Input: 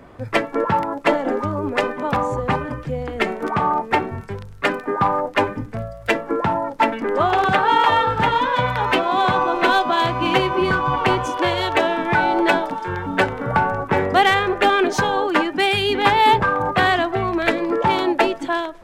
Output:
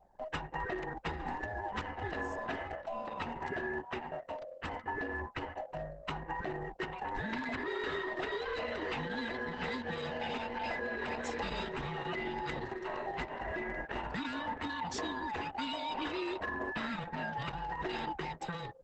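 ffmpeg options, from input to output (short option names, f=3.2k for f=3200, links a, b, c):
-filter_complex "[0:a]afftfilt=real='real(if(lt(b,1008),b+24*(1-2*mod(floor(b/24),2)),b),0)':imag='imag(if(lt(b,1008),b+24*(1-2*mod(floor(b/24),2)),b),0)':win_size=2048:overlap=0.75,lowshelf=f=100:g=-3.5,alimiter=limit=-12.5dB:level=0:latency=1:release=92,acrossover=split=670|1600[a][b][c];[a]acompressor=threshold=-30dB:ratio=4[d];[b]acompressor=threshold=-36dB:ratio=4[e];[c]acompressor=threshold=-33dB:ratio=4[f];[d][e][f]amix=inputs=3:normalize=0,anlmdn=2.51,volume=-8.5dB" -ar 48000 -c:a libopus -b:a 10k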